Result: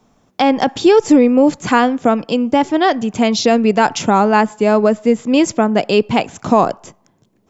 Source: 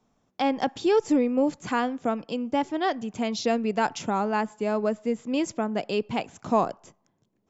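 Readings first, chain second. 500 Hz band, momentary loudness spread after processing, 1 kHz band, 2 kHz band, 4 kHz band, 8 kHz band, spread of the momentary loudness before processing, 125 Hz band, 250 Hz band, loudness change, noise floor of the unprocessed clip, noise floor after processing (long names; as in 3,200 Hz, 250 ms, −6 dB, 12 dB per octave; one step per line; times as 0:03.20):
+12.0 dB, 6 LU, +12.0 dB, +12.5 dB, +13.0 dB, can't be measured, 6 LU, +13.0 dB, +13.0 dB, +12.5 dB, −73 dBFS, −59 dBFS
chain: boost into a limiter +14.5 dB
level −1 dB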